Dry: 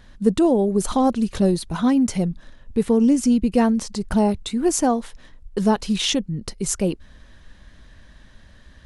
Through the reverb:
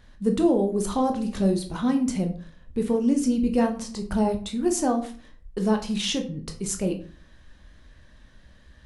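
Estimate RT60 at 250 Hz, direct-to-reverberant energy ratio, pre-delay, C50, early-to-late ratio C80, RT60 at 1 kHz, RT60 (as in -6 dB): 0.50 s, 4.5 dB, 14 ms, 11.5 dB, 16.0 dB, 0.45 s, 0.45 s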